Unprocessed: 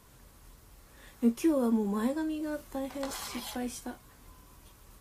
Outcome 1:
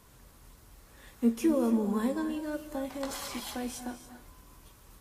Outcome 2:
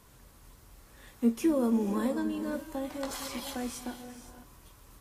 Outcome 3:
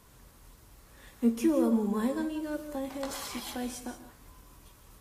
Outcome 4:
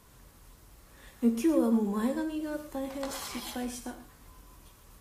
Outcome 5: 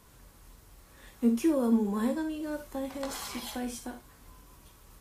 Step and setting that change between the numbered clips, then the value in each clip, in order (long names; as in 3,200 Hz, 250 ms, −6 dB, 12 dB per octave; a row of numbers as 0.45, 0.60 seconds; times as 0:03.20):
reverb whose tail is shaped and stops, gate: 310, 540, 200, 140, 90 milliseconds